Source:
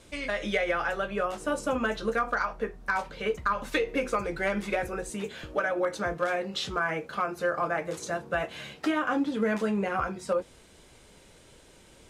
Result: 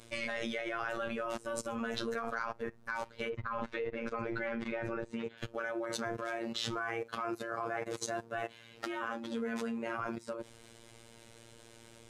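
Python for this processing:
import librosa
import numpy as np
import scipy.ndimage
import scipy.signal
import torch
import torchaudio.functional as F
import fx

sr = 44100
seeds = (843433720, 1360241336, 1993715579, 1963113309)

y = fx.lowpass(x, sr, hz=2900.0, slope=12, at=(3.29, 5.38))
y = fx.level_steps(y, sr, step_db=20)
y = fx.robotise(y, sr, hz=115.0)
y = F.gain(torch.from_numpy(y), 6.0).numpy()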